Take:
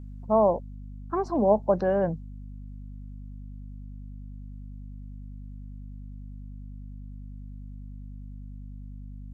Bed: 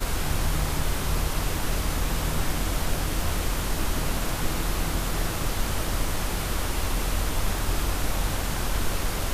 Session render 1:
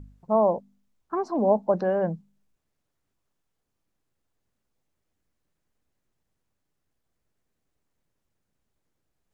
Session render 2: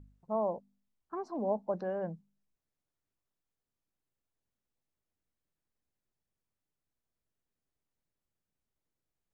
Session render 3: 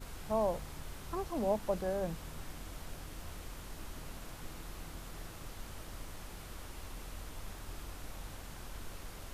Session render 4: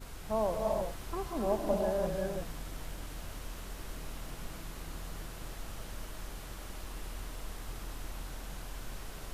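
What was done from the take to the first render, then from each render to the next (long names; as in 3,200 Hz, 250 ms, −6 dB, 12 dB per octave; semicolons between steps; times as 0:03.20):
hum removal 50 Hz, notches 5
level −11 dB
mix in bed −19.5 dB
reverb whose tail is shaped and stops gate 380 ms rising, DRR 1 dB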